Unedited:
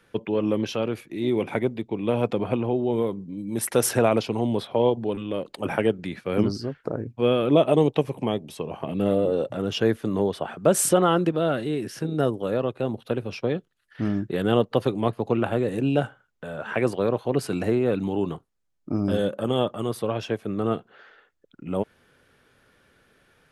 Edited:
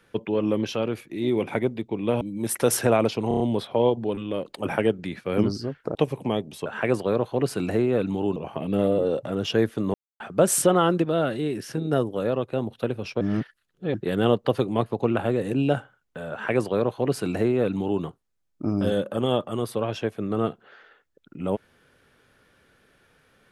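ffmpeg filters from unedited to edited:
ffmpeg -i in.wav -filter_complex "[0:a]asplit=13[link_01][link_02][link_03][link_04][link_05][link_06][link_07][link_08][link_09][link_10][link_11][link_12][link_13];[link_01]atrim=end=2.212[link_14];[link_02]atrim=start=3.328:end=4.432[link_15];[link_03]atrim=start=4.398:end=4.432[link_16];[link_04]atrim=start=4.398:end=4.432[link_17];[link_05]atrim=start=4.398:end=4.432[link_18];[link_06]atrim=start=4.398:end=6.952[link_19];[link_07]atrim=start=7.918:end=8.632[link_20];[link_08]atrim=start=16.588:end=18.292[link_21];[link_09]atrim=start=8.628:end=10.21,asetpts=PTS-STARTPTS,afade=type=out:start_time=1.578:duration=0.004:curve=hsin[link_22];[link_10]atrim=start=10.21:end=10.47,asetpts=PTS-STARTPTS,volume=0[link_23];[link_11]atrim=start=10.47:end=13.482,asetpts=PTS-STARTPTS,afade=type=in:duration=0.004:curve=hsin[link_24];[link_12]atrim=start=13.478:end=14.212,asetpts=PTS-STARTPTS,areverse[link_25];[link_13]atrim=start=14.208[link_26];[link_14][link_15]acrossfade=duration=0.004:curve1=hsin:curve2=hsin[link_27];[link_27][link_16]acrossfade=duration=0.004:curve1=hsin:curve2=hsin[link_28];[link_28][link_17]acrossfade=duration=0.004:curve1=hsin:curve2=hsin[link_29];[link_29][link_18]acrossfade=duration=0.004:curve1=hsin:curve2=hsin[link_30];[link_30][link_19]acrossfade=duration=0.004:curve1=hsin:curve2=hsin[link_31];[link_31][link_20]acrossfade=duration=0.004:curve1=hsin:curve2=hsin[link_32];[link_32][link_21]acrossfade=duration=0.004:curve1=hsin:curve2=hsin[link_33];[link_22][link_23][link_24]concat=n=3:v=0:a=1[link_34];[link_33][link_34]acrossfade=duration=0.004:curve1=hsin:curve2=hsin[link_35];[link_35][link_25]acrossfade=duration=0.004:curve1=hsin:curve2=hsin[link_36];[link_36][link_26]acrossfade=duration=0.004:curve1=hsin:curve2=hsin" out.wav

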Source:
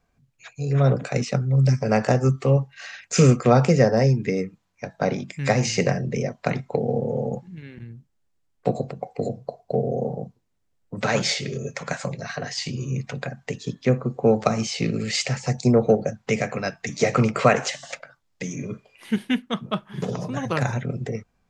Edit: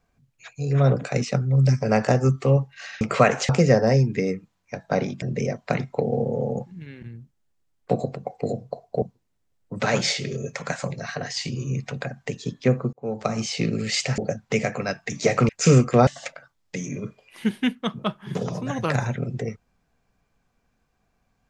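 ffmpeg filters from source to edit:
ffmpeg -i in.wav -filter_complex "[0:a]asplit=9[link_01][link_02][link_03][link_04][link_05][link_06][link_07][link_08][link_09];[link_01]atrim=end=3.012[link_10];[link_02]atrim=start=17.258:end=17.742[link_11];[link_03]atrim=start=3.588:end=5.322[link_12];[link_04]atrim=start=5.978:end=9.782[link_13];[link_05]atrim=start=10.228:end=14.14,asetpts=PTS-STARTPTS,afade=type=out:start_time=3.908:duration=0.004:curve=hsin[link_14];[link_06]atrim=start=14.14:end=15.392,asetpts=PTS-STARTPTS,afade=type=in:duration=0.57[link_15];[link_07]atrim=start=15.948:end=17.262[link_16];[link_08]atrim=start=3.008:end=3.592[link_17];[link_09]atrim=start=17.738[link_18];[link_10][link_11]acrossfade=duration=0.004:curve1=hsin:curve2=hsin[link_19];[link_19][link_12]acrossfade=duration=0.004:curve1=hsin:curve2=hsin[link_20];[link_20][link_13]acrossfade=duration=0.004:curve1=hsin:curve2=hsin[link_21];[link_14][link_15]concat=n=2:v=0:a=1[link_22];[link_21][link_22]acrossfade=duration=0.004:curve1=hsin:curve2=hsin[link_23];[link_23][link_16]acrossfade=duration=0.004:curve1=hsin:curve2=hsin[link_24];[link_24][link_17]acrossfade=duration=0.004:curve1=hsin:curve2=hsin[link_25];[link_25][link_18]acrossfade=duration=0.004:curve1=hsin:curve2=hsin" out.wav

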